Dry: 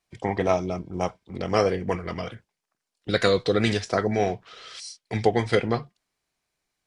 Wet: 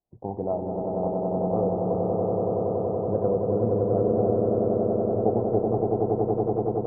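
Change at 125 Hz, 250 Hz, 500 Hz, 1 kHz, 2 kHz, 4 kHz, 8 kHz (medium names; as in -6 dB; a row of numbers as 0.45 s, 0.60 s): +2.0 dB, +2.5 dB, +3.0 dB, -0.5 dB, under -30 dB, under -40 dB, under -35 dB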